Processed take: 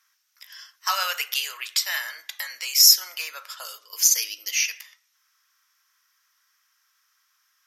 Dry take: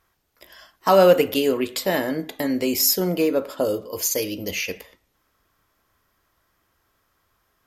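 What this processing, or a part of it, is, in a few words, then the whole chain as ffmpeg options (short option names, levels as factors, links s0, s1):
headphones lying on a table: -filter_complex "[0:a]asettb=1/sr,asplit=3[s0][s1][s2];[s0]atrim=end=3.804[s3];[s1]atrim=start=3.8:end=4.65,asetpts=PTS-STARTPTS,afade=t=in:d=0.004:c=qsin,afade=t=out:st=0.846:d=0.004:c=qsin,lowshelf=f=470:t=q:w=1.5:g=12[s4];[s2]atrim=start=4.646[s5];[s3][s4]acrossfade=d=0.004:c1=hsin:c2=qsin[s6];[s6][s5]acrossfade=d=0.004:c1=qsin:c2=hsin,highpass=f=1300:w=0.5412,highpass=f=1300:w=1.3066,equalizer=f=5700:t=o:w=0.36:g=11,volume=1.19"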